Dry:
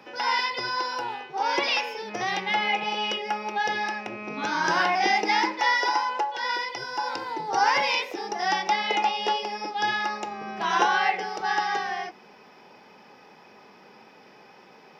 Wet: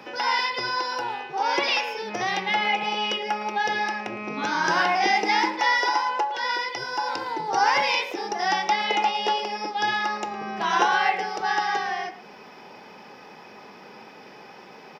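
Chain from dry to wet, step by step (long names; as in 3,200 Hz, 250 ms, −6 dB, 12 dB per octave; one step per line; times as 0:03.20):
in parallel at 0 dB: downward compressor 5 to 1, threshold −41 dBFS, peak gain reduction 21 dB
on the sum: far-end echo of a speakerphone 110 ms, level −13 dB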